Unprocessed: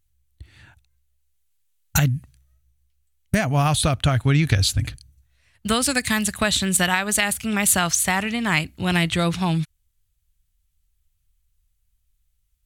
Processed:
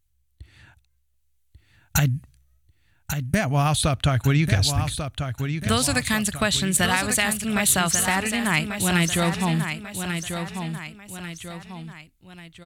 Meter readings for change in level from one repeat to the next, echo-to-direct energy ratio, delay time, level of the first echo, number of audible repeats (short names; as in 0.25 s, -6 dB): -7.0 dB, -6.5 dB, 1.142 s, -7.5 dB, 3